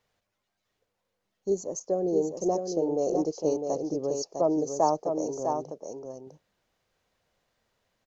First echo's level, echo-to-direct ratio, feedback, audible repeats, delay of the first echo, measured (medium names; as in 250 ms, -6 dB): -5.5 dB, -5.5 dB, no regular repeats, 1, 654 ms